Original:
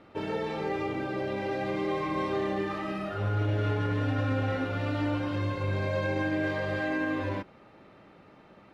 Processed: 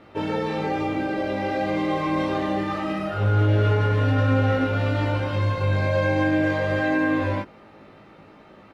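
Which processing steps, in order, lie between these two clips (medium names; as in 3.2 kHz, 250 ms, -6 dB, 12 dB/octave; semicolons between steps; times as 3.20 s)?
doubling 19 ms -3 dB; trim +4.5 dB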